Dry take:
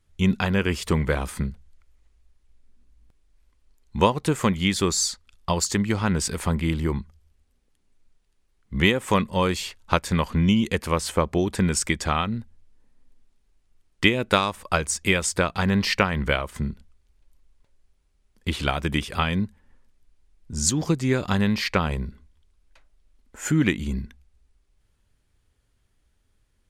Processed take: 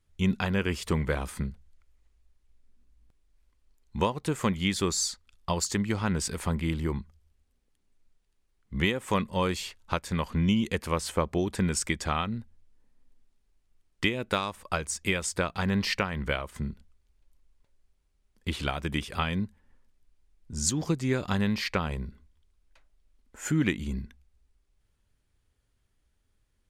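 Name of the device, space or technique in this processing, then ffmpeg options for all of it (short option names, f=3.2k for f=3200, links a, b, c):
clipper into limiter: -af "asoftclip=type=hard:threshold=-3.5dB,alimiter=limit=-7dB:level=0:latency=1:release=456,volume=-5dB"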